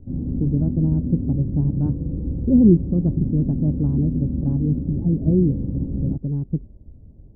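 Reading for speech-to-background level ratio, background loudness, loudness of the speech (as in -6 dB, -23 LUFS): 4.5 dB, -26.5 LUFS, -22.0 LUFS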